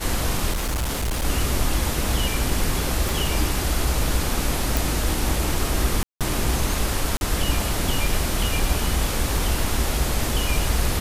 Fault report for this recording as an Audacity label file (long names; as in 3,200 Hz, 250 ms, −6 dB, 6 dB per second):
0.510000	1.250000	clipping −21 dBFS
3.090000	3.090000	click
4.770000	4.770000	click
6.030000	6.210000	drop-out 177 ms
7.170000	7.210000	drop-out 41 ms